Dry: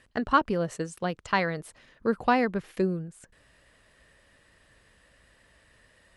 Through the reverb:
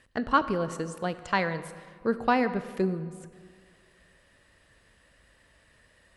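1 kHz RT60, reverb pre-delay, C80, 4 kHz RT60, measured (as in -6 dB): 1.9 s, 19 ms, 14.0 dB, 1.2 s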